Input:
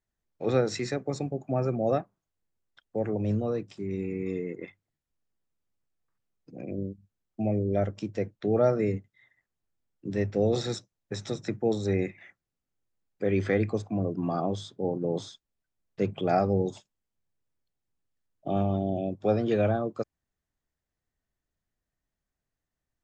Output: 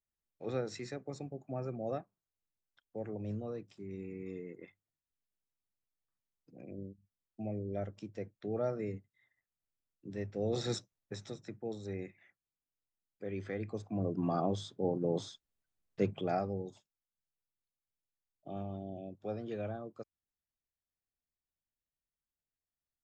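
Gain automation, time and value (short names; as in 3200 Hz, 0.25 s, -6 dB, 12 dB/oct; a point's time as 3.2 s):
10.38 s -11.5 dB
10.76 s -2 dB
11.45 s -14 dB
13.57 s -14 dB
14.14 s -3.5 dB
16.03 s -3.5 dB
16.65 s -14.5 dB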